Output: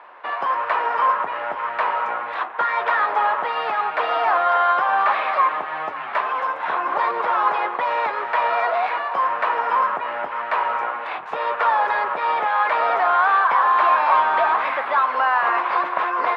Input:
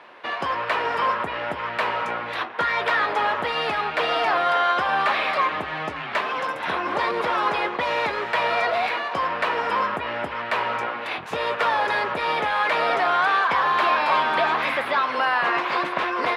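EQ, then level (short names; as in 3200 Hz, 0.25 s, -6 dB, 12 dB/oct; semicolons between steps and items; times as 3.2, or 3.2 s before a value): band-pass 1000 Hz, Q 1.3; +5.0 dB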